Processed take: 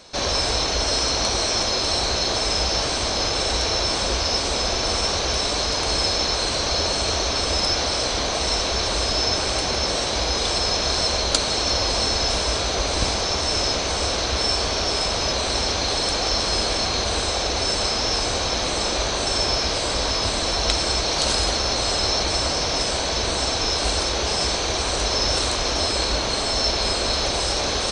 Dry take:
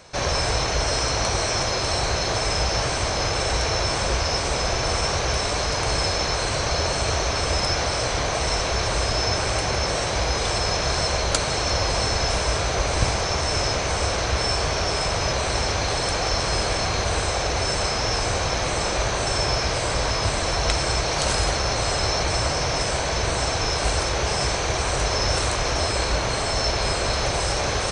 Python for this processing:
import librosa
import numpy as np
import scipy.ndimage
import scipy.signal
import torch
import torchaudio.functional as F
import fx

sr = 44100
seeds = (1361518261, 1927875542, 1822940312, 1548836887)

y = fx.graphic_eq(x, sr, hz=(125, 250, 2000, 4000), db=(-8, 6, -3, 8))
y = y * librosa.db_to_amplitude(-1.0)